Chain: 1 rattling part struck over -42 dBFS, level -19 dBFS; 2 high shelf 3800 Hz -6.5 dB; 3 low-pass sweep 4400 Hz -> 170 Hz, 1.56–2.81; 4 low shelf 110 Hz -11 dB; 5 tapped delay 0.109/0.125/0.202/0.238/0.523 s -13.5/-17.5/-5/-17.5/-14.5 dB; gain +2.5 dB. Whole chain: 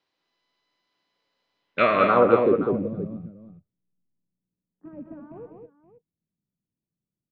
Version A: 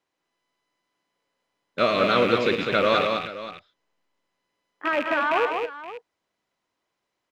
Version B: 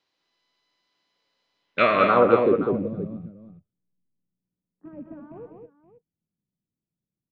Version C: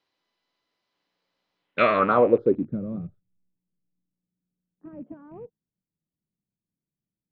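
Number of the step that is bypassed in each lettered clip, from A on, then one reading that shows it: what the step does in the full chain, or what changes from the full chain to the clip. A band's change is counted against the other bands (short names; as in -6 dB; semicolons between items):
3, 4 kHz band +14.5 dB; 2, 4 kHz band +2.5 dB; 5, echo-to-direct -3.5 dB to none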